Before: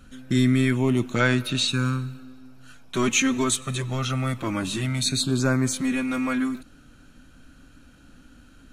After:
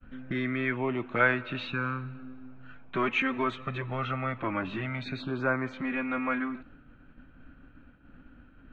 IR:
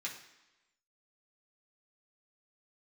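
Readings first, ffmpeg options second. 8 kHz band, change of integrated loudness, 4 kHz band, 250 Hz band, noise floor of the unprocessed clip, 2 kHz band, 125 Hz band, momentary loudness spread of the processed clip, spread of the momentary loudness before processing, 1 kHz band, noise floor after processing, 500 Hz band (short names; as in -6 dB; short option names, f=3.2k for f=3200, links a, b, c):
under -35 dB, -7.0 dB, -14.5 dB, -9.0 dB, -52 dBFS, -1.0 dB, -11.5 dB, 11 LU, 8 LU, 0.0 dB, -56 dBFS, -4.0 dB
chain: -filter_complex "[0:a]agate=range=-33dB:threshold=-46dB:ratio=3:detection=peak,lowpass=f=2.4k:w=0.5412,lowpass=f=2.4k:w=1.3066,acrossover=split=430[a][b];[a]acompressor=threshold=-35dB:ratio=6[c];[c][b]amix=inputs=2:normalize=0"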